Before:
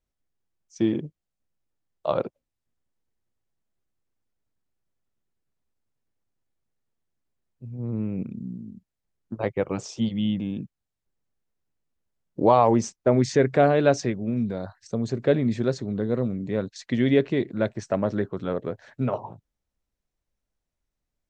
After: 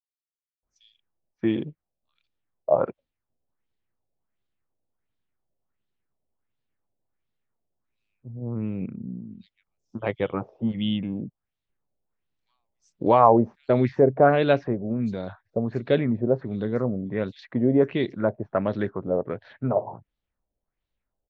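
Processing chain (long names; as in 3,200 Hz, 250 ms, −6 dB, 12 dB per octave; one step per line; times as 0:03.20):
multiband delay without the direct sound highs, lows 630 ms, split 5,300 Hz
auto-filter low-pass sine 1.4 Hz 600–3,900 Hz
level −1 dB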